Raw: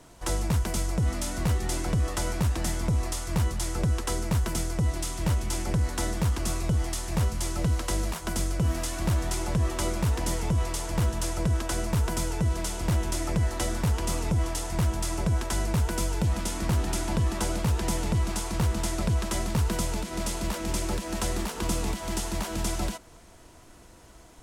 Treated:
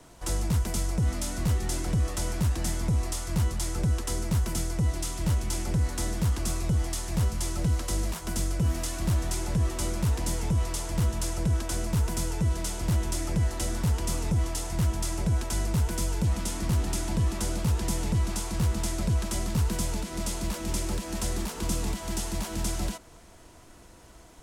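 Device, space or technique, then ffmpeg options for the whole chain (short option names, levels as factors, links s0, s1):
one-band saturation: -filter_complex "[0:a]acrossover=split=300|3800[s0][s1][s2];[s1]asoftclip=type=tanh:threshold=0.0158[s3];[s0][s3][s2]amix=inputs=3:normalize=0"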